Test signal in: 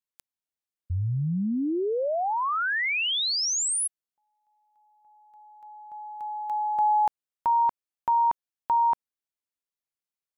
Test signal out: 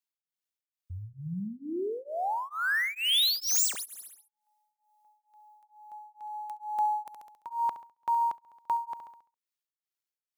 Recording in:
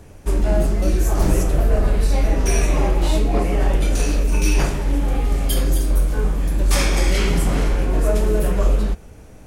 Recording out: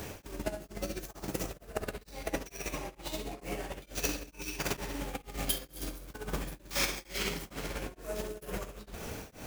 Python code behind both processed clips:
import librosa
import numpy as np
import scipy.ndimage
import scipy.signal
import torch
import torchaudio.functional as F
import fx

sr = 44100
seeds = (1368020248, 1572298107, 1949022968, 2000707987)

p1 = scipy.ndimage.median_filter(x, 5, mode='constant')
p2 = fx.low_shelf(p1, sr, hz=500.0, db=7.5)
p3 = fx.over_compress(p2, sr, threshold_db=-16.0, ratio=-0.5)
p4 = fx.tilt_eq(p3, sr, slope=4.0)
p5 = p4 + fx.echo_feedback(p4, sr, ms=68, feedback_pct=57, wet_db=-13.5, dry=0)
p6 = p5 * np.abs(np.cos(np.pi * 2.2 * np.arange(len(p5)) / sr))
y = F.gain(torch.from_numpy(p6), -4.0).numpy()